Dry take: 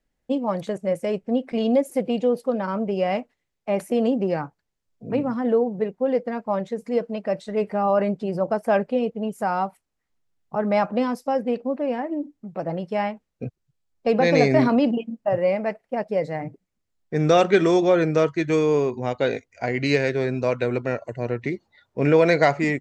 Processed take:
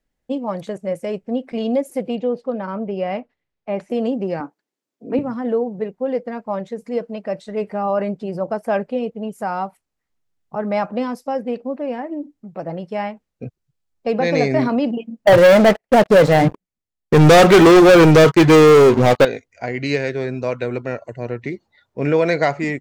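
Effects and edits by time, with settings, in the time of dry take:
2.15–3.90 s: distance through air 140 m
4.40–5.19 s: resonant high-pass 290 Hz, resonance Q 2.3
15.27–19.25 s: waveshaping leveller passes 5

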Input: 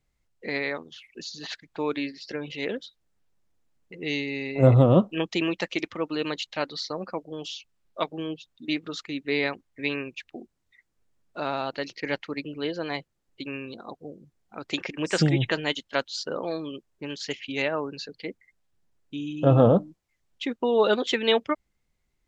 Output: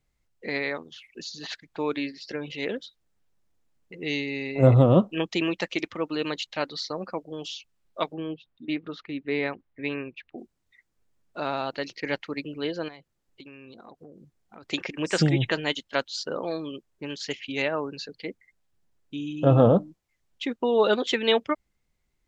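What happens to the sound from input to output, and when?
8.14–10.38 s: distance through air 300 m
12.88–14.63 s: compression 5:1, threshold -43 dBFS

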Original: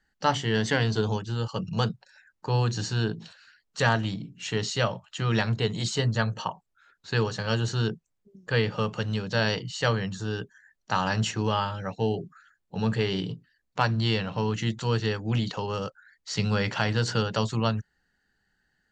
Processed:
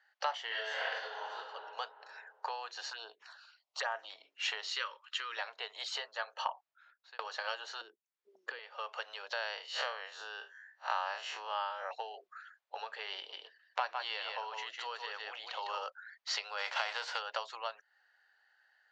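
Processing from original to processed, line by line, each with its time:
0.47–1.35 s: reverb throw, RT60 1.5 s, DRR -11 dB
2.90–4.10 s: touch-sensitive phaser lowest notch 260 Hz, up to 4.2 kHz, full sweep at -19 dBFS
4.75–5.37 s: Butterworth band-stop 700 Hz, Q 1.2
6.34–7.19 s: fade out
7.81–8.59 s: resonant low shelf 460 Hz +12 dB, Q 3
9.33–11.91 s: spectral blur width 99 ms
13.17–15.84 s: delay 154 ms -5 dB
16.57–17.18 s: formants flattened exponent 0.6
whole clip: Bessel low-pass 3.7 kHz, order 4; compression 10:1, threshold -34 dBFS; steep high-pass 600 Hz 36 dB/octave; trim +5 dB

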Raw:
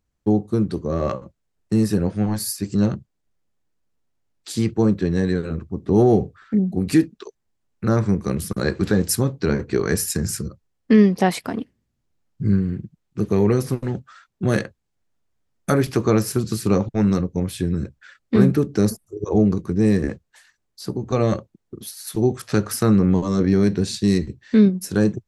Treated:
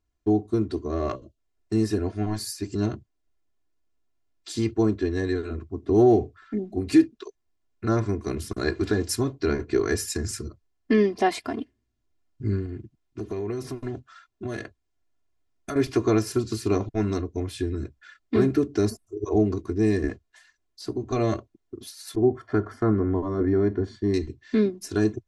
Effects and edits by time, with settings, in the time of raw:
1.16–1.37 s: time-frequency box 670–2700 Hz -15 dB
12.65–15.76 s: compression, threshold -22 dBFS
22.15–24.14 s: Savitzky-Golay filter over 41 samples
whole clip: low-pass 8 kHz 12 dB/octave; comb 2.9 ms, depth 99%; trim -6 dB

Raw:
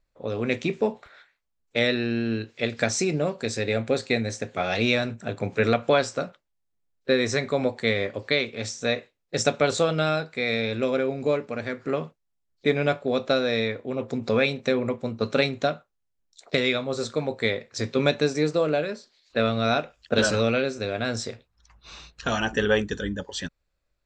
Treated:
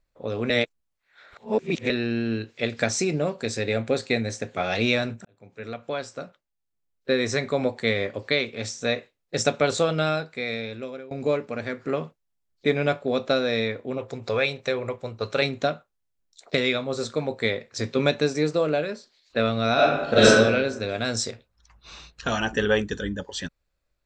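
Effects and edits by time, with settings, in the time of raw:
0.50–1.90 s: reverse
5.25–7.42 s: fade in
10.07–11.11 s: fade out, to -20 dB
13.98–15.42 s: peaking EQ 230 Hz -12 dB 0.91 oct
19.74–20.26 s: reverb throw, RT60 1.1 s, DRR -8 dB
20.89–21.31 s: tone controls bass 0 dB, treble +8 dB

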